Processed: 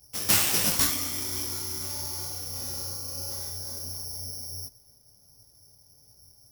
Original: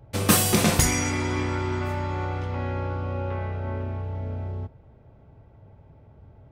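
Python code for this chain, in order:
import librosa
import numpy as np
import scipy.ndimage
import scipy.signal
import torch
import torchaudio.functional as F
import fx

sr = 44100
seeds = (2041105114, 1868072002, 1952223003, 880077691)

y = fx.high_shelf(x, sr, hz=4700.0, db=8.5)
y = (np.kron(y[::8], np.eye(8)[0]) * 8)[:len(y)]
y = fx.detune_double(y, sr, cents=51)
y = F.gain(torch.from_numpy(y), -11.5).numpy()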